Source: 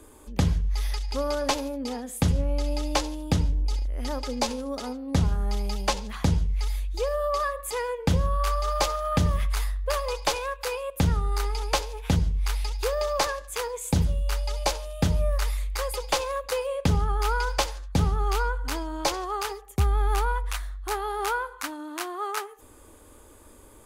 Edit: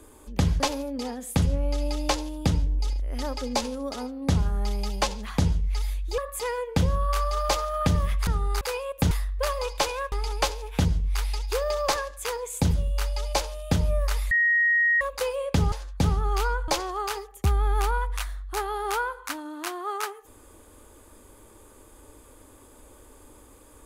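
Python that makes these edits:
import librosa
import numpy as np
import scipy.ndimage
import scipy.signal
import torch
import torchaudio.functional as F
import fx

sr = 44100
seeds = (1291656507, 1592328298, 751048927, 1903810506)

y = fx.edit(x, sr, fx.cut(start_s=0.6, length_s=0.86),
    fx.cut(start_s=7.04, length_s=0.45),
    fx.swap(start_s=9.58, length_s=1.01, other_s=11.09, other_length_s=0.34),
    fx.bleep(start_s=15.62, length_s=0.7, hz=1880.0, db=-18.0),
    fx.cut(start_s=17.03, length_s=0.64),
    fx.cut(start_s=18.63, length_s=0.39), tone=tone)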